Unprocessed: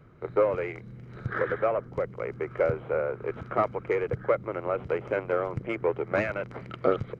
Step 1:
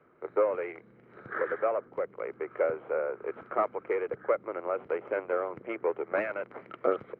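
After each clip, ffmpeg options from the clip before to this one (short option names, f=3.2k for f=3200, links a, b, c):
-filter_complex "[0:a]acrossover=split=260 2700:gain=0.0708 1 0.0708[a][b][c];[a][b][c]amix=inputs=3:normalize=0,volume=-2dB"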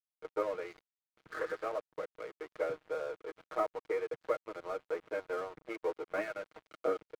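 -af "aecho=1:1:6.4:0.91,aeval=exprs='sgn(val(0))*max(abs(val(0))-0.00841,0)':c=same,volume=-7.5dB"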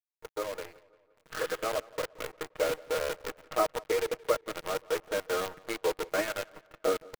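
-filter_complex "[0:a]acrusher=bits=7:dc=4:mix=0:aa=0.000001,asplit=2[a][b];[b]adelay=174,lowpass=f=3.9k:p=1,volume=-22dB,asplit=2[c][d];[d]adelay=174,lowpass=f=3.9k:p=1,volume=0.51,asplit=2[e][f];[f]adelay=174,lowpass=f=3.9k:p=1,volume=0.51,asplit=2[g][h];[h]adelay=174,lowpass=f=3.9k:p=1,volume=0.51[i];[a][c][e][g][i]amix=inputs=5:normalize=0,dynaudnorm=f=500:g=5:m=7dB,volume=-1.5dB"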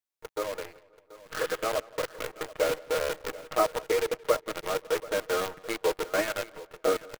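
-af "aecho=1:1:733:0.126,volume=2.5dB"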